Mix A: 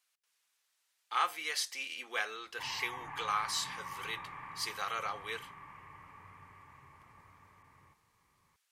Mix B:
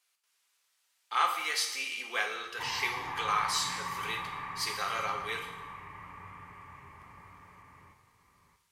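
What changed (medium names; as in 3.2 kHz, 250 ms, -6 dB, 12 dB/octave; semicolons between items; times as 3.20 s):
background +4.0 dB; reverb: on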